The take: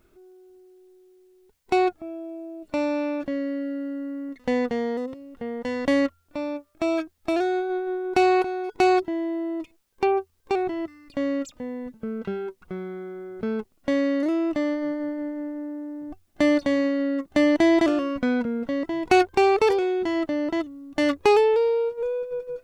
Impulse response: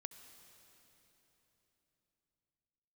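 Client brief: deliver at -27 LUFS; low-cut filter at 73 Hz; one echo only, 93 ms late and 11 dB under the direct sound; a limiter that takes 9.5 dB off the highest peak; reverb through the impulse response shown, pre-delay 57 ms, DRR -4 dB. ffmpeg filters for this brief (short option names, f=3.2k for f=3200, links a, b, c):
-filter_complex "[0:a]highpass=73,alimiter=limit=-16.5dB:level=0:latency=1,aecho=1:1:93:0.282,asplit=2[a][b];[1:a]atrim=start_sample=2205,adelay=57[c];[b][c]afir=irnorm=-1:irlink=0,volume=8.5dB[d];[a][d]amix=inputs=2:normalize=0,volume=-6.5dB"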